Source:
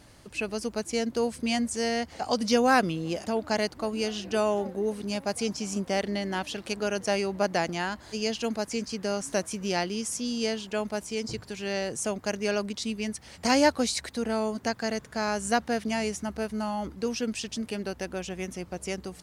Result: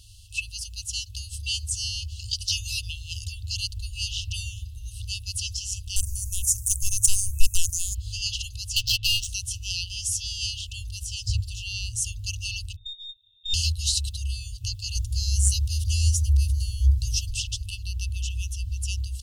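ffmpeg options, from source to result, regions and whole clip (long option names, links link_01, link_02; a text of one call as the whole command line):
ffmpeg -i in.wav -filter_complex "[0:a]asettb=1/sr,asplit=3[link_01][link_02][link_03];[link_01]atrim=end=5.964[link_04];[link_02]atrim=start=5.96:end=7.95,asetpts=PTS-STARTPTS,afade=type=in:duration=0.004:curve=qsin,afade=type=out:start_time=1.986:duration=0.004:curve=qsin,asuperstop=centerf=3300:order=8:qfactor=0.61,bass=frequency=250:gain=-10,treble=frequency=4000:gain=11,aeval=exprs='0.211*sin(PI/2*2.24*val(0)/0.211)':channel_layout=same[link_05];[link_03]atrim=start=7.946[link_06];[link_04][link_05]acrossfade=duration=0.004:curve1=hsin:curve2=qsin[link_07];[link_07][link_06]acrossfade=duration=0.004:curve1=qsin:curve2=hsin,asettb=1/sr,asplit=3[link_08][link_09][link_10];[link_08]atrim=end=8.764[link_11];[link_09]atrim=start=8.76:end=9.29,asetpts=PTS-STARTPTS,afade=type=in:duration=0.004:curve=qsin,afade=type=out:start_time=0.526:duration=0.004:curve=qsin,equalizer=frequency=3000:width_type=o:width=1.9:gain=13.5,aecho=1:1:7.1:1,atrim=end_sample=23373,adynamicsmooth=sensitivity=4.5:basefreq=1500[link_12];[link_10]atrim=start=9.286[link_13];[link_11][link_12]acrossfade=duration=0.004:curve1=hsin:curve2=qsin[link_14];[link_14][link_13]acrossfade=duration=0.004:curve1=qsin:curve2=hsin,asettb=1/sr,asplit=3[link_15][link_16][link_17];[link_15]atrim=end=12.764[link_18];[link_16]atrim=start=12.76:end=13.54,asetpts=PTS-STARTPTS,afade=type=in:duration=0.004:curve=qsin,afade=type=out:start_time=0.776:duration=0.004:curve=qsin,asplit=3[link_19][link_20][link_21];[link_19]bandpass=frequency=270:width_type=q:width=8,volume=0dB[link_22];[link_20]bandpass=frequency=2290:width_type=q:width=8,volume=-6dB[link_23];[link_21]bandpass=frequency=3010:width_type=q:width=8,volume=-9dB[link_24];[link_22][link_23][link_24]amix=inputs=3:normalize=0,lowpass=frequency=3300:width_type=q:width=0.5098,lowpass=frequency=3300:width_type=q:width=0.6013,lowpass=frequency=3300:width_type=q:width=0.9,lowpass=frequency=3300:width_type=q:width=2.563,afreqshift=-3900,aeval=exprs='(tanh(7.94*val(0)+0.5)-tanh(0.5))/7.94':channel_layout=same[link_25];[link_17]atrim=start=13.536[link_26];[link_18][link_25]acrossfade=duration=0.004:curve1=hsin:curve2=qsin[link_27];[link_27][link_26]acrossfade=duration=0.004:curve1=qsin:curve2=hsin,asettb=1/sr,asplit=3[link_28][link_29][link_30];[link_28]atrim=end=14.954[link_31];[link_29]atrim=start=14.95:end=17.31,asetpts=PTS-STARTPTS,afade=type=in:duration=0.004:curve=qsin,afade=type=out:start_time=2.356:duration=0.004:curve=qsin,equalizer=frequency=2000:width=0.77:gain=-13.5,acontrast=75[link_32];[link_30]atrim=start=17.306[link_33];[link_31][link_32]acrossfade=duration=0.004:curve1=hsin:curve2=qsin[link_34];[link_34][link_33]acrossfade=duration=0.004:curve1=qsin:curve2=hsin,afftfilt=real='re*(1-between(b*sr/4096,110,2600))':imag='im*(1-between(b*sr/4096,110,2600))':win_size=4096:overlap=0.75,asubboost=boost=9:cutoff=150,acontrast=56" out.wav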